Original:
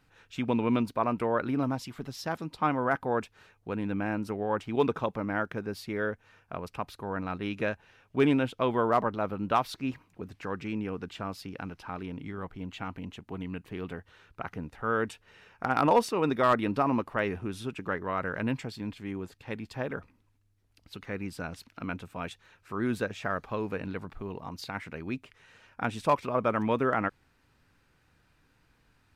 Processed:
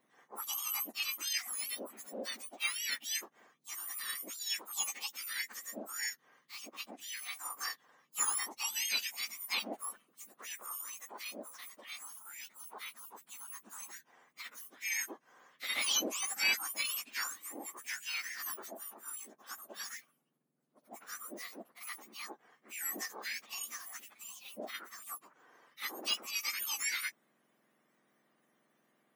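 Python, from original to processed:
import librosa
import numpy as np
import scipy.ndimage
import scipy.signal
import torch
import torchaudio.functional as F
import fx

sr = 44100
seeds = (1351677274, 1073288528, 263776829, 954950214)

y = fx.octave_mirror(x, sr, pivot_hz=1700.0)
y = y * librosa.db_to_amplitude(-3.5)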